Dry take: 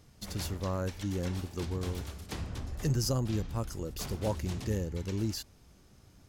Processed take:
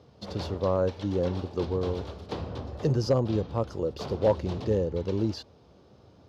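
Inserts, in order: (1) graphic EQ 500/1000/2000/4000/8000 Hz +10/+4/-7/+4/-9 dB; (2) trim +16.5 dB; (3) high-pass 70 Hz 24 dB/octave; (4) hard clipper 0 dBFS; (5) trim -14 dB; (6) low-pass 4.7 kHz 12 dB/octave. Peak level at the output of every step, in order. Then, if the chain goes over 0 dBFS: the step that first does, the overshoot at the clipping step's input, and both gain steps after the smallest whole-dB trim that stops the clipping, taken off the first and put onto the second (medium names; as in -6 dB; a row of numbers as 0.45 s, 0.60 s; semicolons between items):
-14.0 dBFS, +2.5 dBFS, +3.5 dBFS, 0.0 dBFS, -14.0 dBFS, -14.0 dBFS; step 2, 3.5 dB; step 2 +12.5 dB, step 5 -10 dB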